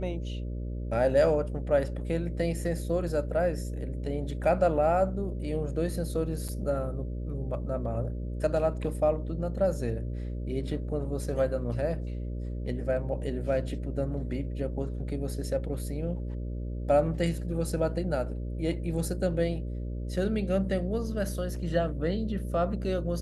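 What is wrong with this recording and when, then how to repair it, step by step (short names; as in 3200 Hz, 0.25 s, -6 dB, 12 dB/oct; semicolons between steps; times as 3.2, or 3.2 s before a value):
buzz 60 Hz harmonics 10 -34 dBFS
6.48–6.49 gap 6.1 ms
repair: de-hum 60 Hz, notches 10; interpolate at 6.48, 6.1 ms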